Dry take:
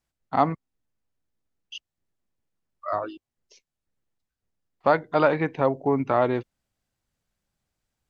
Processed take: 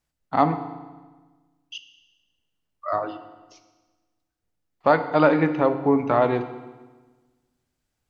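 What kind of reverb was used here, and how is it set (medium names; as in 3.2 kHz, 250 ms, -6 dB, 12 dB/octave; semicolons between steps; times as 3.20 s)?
FDN reverb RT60 1.3 s, low-frequency decay 1.25×, high-frequency decay 0.9×, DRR 8 dB; trim +1.5 dB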